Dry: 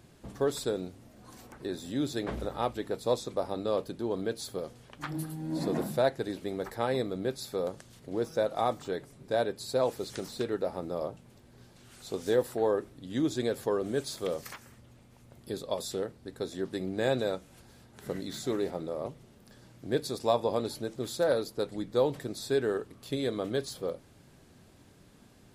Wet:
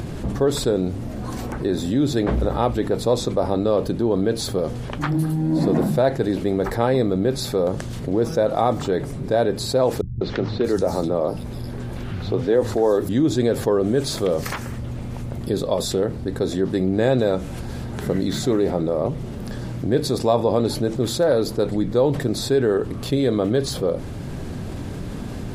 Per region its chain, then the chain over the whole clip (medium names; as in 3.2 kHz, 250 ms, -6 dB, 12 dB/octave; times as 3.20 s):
10.01–13.09 s: peaking EQ 7.9 kHz -3 dB 0.22 oct + three bands offset in time lows, mids, highs 200/630 ms, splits 150/4200 Hz
whole clip: upward compressor, threshold -49 dBFS; tilt EQ -2 dB/octave; level flattener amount 50%; trim +5 dB